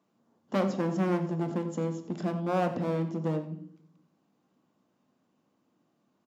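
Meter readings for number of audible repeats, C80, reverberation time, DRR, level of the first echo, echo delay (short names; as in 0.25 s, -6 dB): 1, 12.5 dB, 0.65 s, 6.5 dB, -15.5 dB, 90 ms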